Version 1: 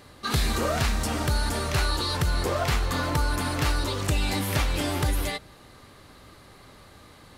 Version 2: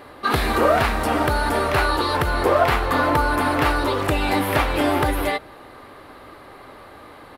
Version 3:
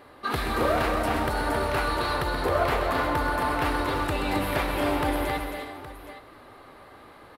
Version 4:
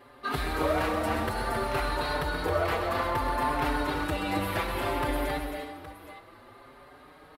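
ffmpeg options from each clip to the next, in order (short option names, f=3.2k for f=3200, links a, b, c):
-af "firequalizer=gain_entry='entry(190,0);entry(280,9);entry(760,12);entry(6400,-8);entry(11000,2)':delay=0.05:min_phase=1"
-af "aecho=1:1:129|268|336|407|818:0.355|0.531|0.282|0.141|0.211,volume=-8dB"
-filter_complex "[0:a]asplit=2[a][b];[b]adelay=5.3,afreqshift=0.6[c];[a][c]amix=inputs=2:normalize=1"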